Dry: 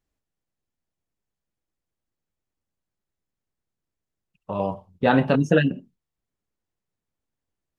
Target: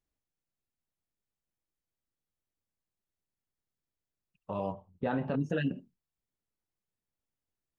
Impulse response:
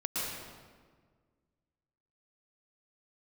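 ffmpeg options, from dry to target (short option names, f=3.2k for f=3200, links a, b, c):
-filter_complex "[0:a]asettb=1/sr,asplit=3[a][b][c];[a]atrim=end=4.724[d];[b]atrim=start=4.72:end=5.5,asetpts=PTS-STARTPTS,afade=t=in:d=0.004:c=qsin,afade=t=out:st=0.776:d=0.004:c=qsin,lowpass=f=1.6k:p=1[e];[c]atrim=start=5.496[f];[d][e]acrossfade=d=0.004:c1=hsin:c2=qsin[g];[g][f]acrossfade=d=0.004:c1=qsin:c2=hsin,alimiter=limit=-15dB:level=0:latency=1:release=90,volume=-7dB"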